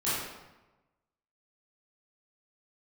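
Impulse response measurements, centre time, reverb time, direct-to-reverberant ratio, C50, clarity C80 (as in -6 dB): 87 ms, 1.1 s, -12.0 dB, -2.0 dB, 1.5 dB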